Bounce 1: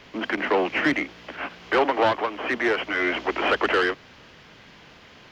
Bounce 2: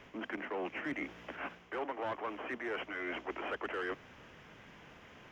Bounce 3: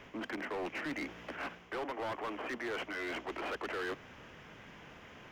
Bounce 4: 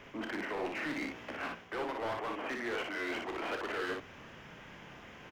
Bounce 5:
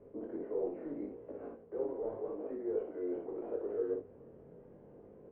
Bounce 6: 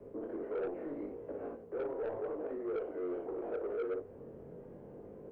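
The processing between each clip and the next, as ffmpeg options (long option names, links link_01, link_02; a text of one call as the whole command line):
ffmpeg -i in.wav -af "equalizer=frequency=4300:width_type=o:width=0.59:gain=-14.5,areverse,acompressor=threshold=-32dB:ratio=4,areverse,volume=-5.5dB" out.wav
ffmpeg -i in.wav -af "asoftclip=type=hard:threshold=-37dB,volume=2.5dB" out.wav
ffmpeg -i in.wav -af "aecho=1:1:30|59:0.355|0.668" out.wav
ffmpeg -i in.wav -af "lowpass=frequency=460:width_type=q:width=3.7,flanger=delay=19:depth=3.9:speed=0.78,volume=-3dB" out.wav
ffmpeg -i in.wav -filter_complex "[0:a]acrossover=split=100|390|890[link_01][link_02][link_03][link_04];[link_02]acompressor=threshold=-51dB:ratio=6[link_05];[link_01][link_05][link_03][link_04]amix=inputs=4:normalize=0,asoftclip=type=tanh:threshold=-37dB,volume=5.5dB" out.wav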